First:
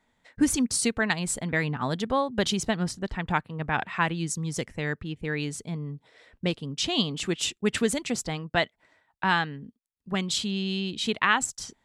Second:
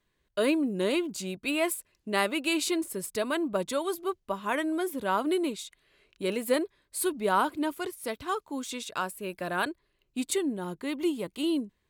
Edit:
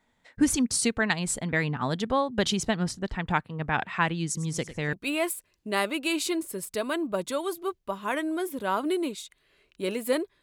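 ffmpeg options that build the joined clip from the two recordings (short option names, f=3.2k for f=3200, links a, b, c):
-filter_complex "[0:a]asettb=1/sr,asplit=3[a][b][c];[a]atrim=end=4.254[d];[b]atrim=start=4.25:end=4.93,asetpts=PTS-STARTPTS,afade=t=in:d=0.004:c=qsin,afade=t=out:st=0.676:d=0.004:c=qsin,aecho=1:1:100|200|300|400:0.2|0.0738|0.0273|0.0101,atrim=end_sample=29988[e];[c]atrim=start=4.926[f];[d][e]acrossfade=d=0.004:c1=hsin:c2=qsin[g];[g][f]acrossfade=d=0.004:c1=qsin:c2=hsin,apad=whole_dur=10.42,atrim=end=10.42,atrim=end=4.932[h];[1:a]atrim=start=1.338:end=6.83[i];[h][i]acrossfade=d=0.004:c1=hsin:c2=hsin"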